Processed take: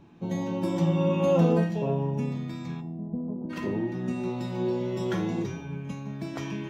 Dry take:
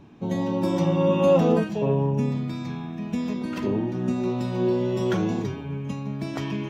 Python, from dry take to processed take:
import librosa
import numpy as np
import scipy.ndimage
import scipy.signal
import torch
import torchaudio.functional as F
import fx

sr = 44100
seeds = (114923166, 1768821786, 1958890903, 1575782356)

y = fx.cheby2_lowpass(x, sr, hz=2600.0, order=4, stop_db=60, at=(2.8, 3.49), fade=0.02)
y = fx.comb_fb(y, sr, f0_hz=170.0, decay_s=0.48, harmonics='all', damping=0.0, mix_pct=80)
y = F.gain(torch.from_numpy(y), 7.0).numpy()